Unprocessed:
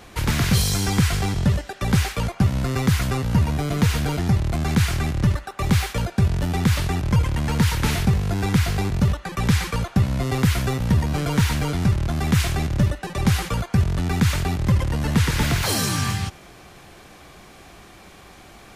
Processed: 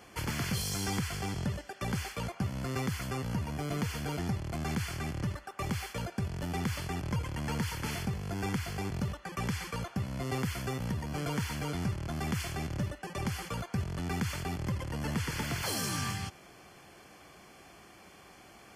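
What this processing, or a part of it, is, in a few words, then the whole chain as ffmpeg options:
PA system with an anti-feedback notch: -af "highpass=f=130:p=1,asuperstop=centerf=3800:order=20:qfactor=7.9,alimiter=limit=0.188:level=0:latency=1:release=400,volume=0.398"

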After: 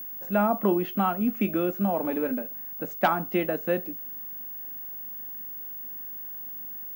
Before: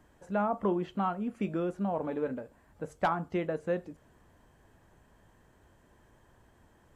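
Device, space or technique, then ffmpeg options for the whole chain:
old television with a line whistle: -af "highpass=f=190:w=0.5412,highpass=f=190:w=1.3066,equalizer=f=230:t=q:w=4:g=4,equalizer=f=460:t=q:w=4:g=-5,equalizer=f=1000:t=q:w=4:g=-5,equalizer=f=2600:t=q:w=4:g=4,lowpass=f=7200:w=0.5412,lowpass=f=7200:w=1.3066,aeval=exprs='val(0)+0.00794*sin(2*PI*15625*n/s)':c=same,volume=2.24"

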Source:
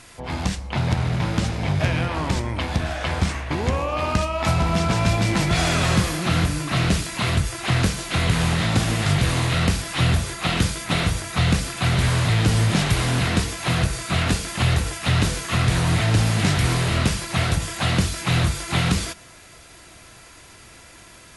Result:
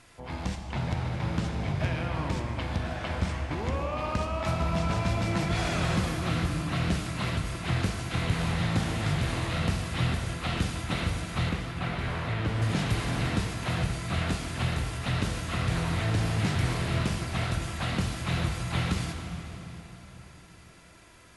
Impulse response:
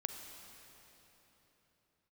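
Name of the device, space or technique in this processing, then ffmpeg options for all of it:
swimming-pool hall: -filter_complex "[0:a]asettb=1/sr,asplit=3[s0][s1][s2];[s0]atrim=end=11.494[s3];[s1]atrim=start=11.49:end=12.62,asetpts=PTS-STARTPTS,afade=t=in:d=0.004:c=qsin,afade=t=out:st=1.126:d=0.004:c=qsin,bass=f=250:g=-4,treble=f=4000:g=-12[s4];[s2]atrim=start=12.616[s5];[s3][s4]acrossfade=d=0.004:c1=hsin:c2=qsin[s6];[s6][s5]acrossfade=d=0.004:c1=qsin:c2=hsin[s7];[1:a]atrim=start_sample=2205[s8];[s7][s8]afir=irnorm=-1:irlink=0,highshelf=f=4000:g=-6,volume=0.447"

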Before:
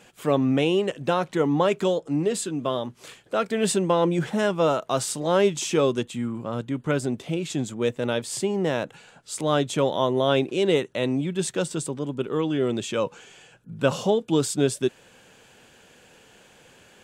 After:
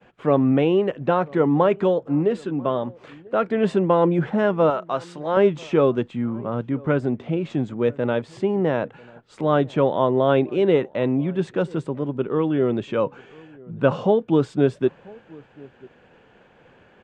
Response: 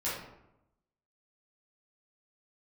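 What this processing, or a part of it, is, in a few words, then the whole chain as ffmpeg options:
hearing-loss simulation: -filter_complex "[0:a]lowpass=1800,agate=range=0.0224:threshold=0.00224:ratio=3:detection=peak,asettb=1/sr,asplit=3[s0][s1][s2];[s0]atrim=end=4.704[s3];[s1]atrim=start=4.7:end=5.37,asetpts=PTS-STARTPTS,afade=t=in:d=0.004:c=qsin,afade=t=out:st=0.666:d=0.004:c=qsin,lowshelf=f=450:g=-11[s4];[s2]atrim=start=5.366[s5];[s3][s4]acrossfade=d=0.004:c1=hsin:c2=qsin[s6];[s6][s5]acrossfade=d=0.004:c1=qsin:c2=hsin,asplit=2[s7][s8];[s8]adelay=991.3,volume=0.0631,highshelf=f=4000:g=-22.3[s9];[s7][s9]amix=inputs=2:normalize=0,volume=1.5"

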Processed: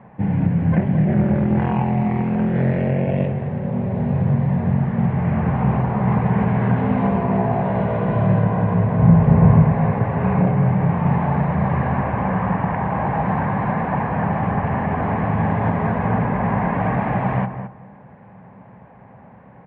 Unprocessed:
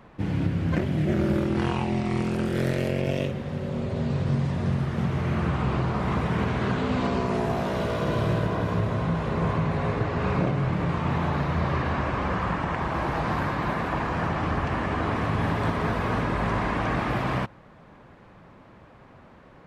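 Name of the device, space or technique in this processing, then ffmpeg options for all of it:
bass cabinet: -filter_complex "[0:a]highpass=82,equalizer=f=120:t=q:w=4:g=5,equalizer=f=190:t=q:w=4:g=7,equalizer=f=330:t=q:w=4:g=-9,equalizer=f=800:t=q:w=4:g=6,equalizer=f=1300:t=q:w=4:g=-9,lowpass=f=2100:w=0.5412,lowpass=f=2100:w=1.3066,asettb=1/sr,asplit=3[s0][s1][s2];[s0]atrim=end=8.994[s3];[s1]atrim=start=8.99:end=9.63,asetpts=PTS-STARTPTS,afade=t=in:d=0.004:c=qsin,afade=t=out:st=0.636:d=0.004:c=qsin,lowshelf=f=220:g=11.5[s4];[s2]atrim=start=9.626[s5];[s3][s4]acrossfade=d=0.004:c1=hsin:c2=qsin[s6];[s6][s5]acrossfade=d=0.004:c1=qsin:c2=hsin,asettb=1/sr,asplit=3[s7][s8][s9];[s7]atrim=end=16.024[s10];[s8]atrim=start=16.02:end=16.73,asetpts=PTS-STARTPTS,afade=t=in:d=0.004:c=qsin,afade=t=out:st=0.706:d=0.004:c=qsin,lowpass=4300[s11];[s9]atrim=start=16.726[s12];[s10][s11]acrossfade=d=0.004:c1=hsin:c2=qsin[s13];[s13][s12]acrossfade=d=0.004:c1=qsin:c2=hsin,asplit=2[s14][s15];[s15]adelay=216,lowpass=f=1700:p=1,volume=0.355,asplit=2[s16][s17];[s17]adelay=216,lowpass=f=1700:p=1,volume=0.22,asplit=2[s18][s19];[s19]adelay=216,lowpass=f=1700:p=1,volume=0.22[s20];[s14][s16][s18][s20]amix=inputs=4:normalize=0,volume=1.68"

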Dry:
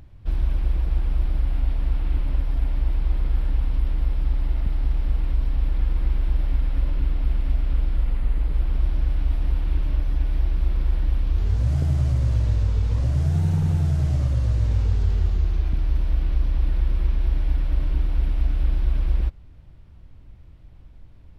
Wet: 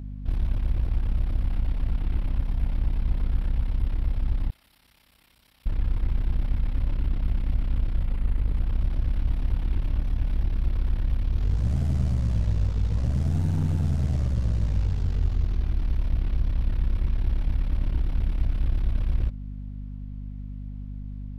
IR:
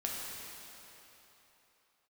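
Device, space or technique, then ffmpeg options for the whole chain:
valve amplifier with mains hum: -filter_complex "[0:a]aeval=exprs='(tanh(6.31*val(0)+0.65)-tanh(0.65))/6.31':c=same,aeval=exprs='val(0)+0.02*(sin(2*PI*50*n/s)+sin(2*PI*2*50*n/s)/2+sin(2*PI*3*50*n/s)/3+sin(2*PI*4*50*n/s)/4+sin(2*PI*5*50*n/s)/5)':c=same,asettb=1/sr,asplit=3[s0][s1][s2];[s0]atrim=end=4.504[s3];[s1]atrim=start=4.5:end=5.66,asetpts=PTS-STARTPTS,afade=t=in:d=0.004:c=qsin,afade=t=out:st=1.156:d=0.004:c=qsin,aderivative[s4];[s2]atrim=start=5.656[s5];[s3][s4]acrossfade=d=0.004:c1=hsin:c2=qsin[s6];[s6][s5]acrossfade=d=0.004:c1=qsin:c2=hsin"

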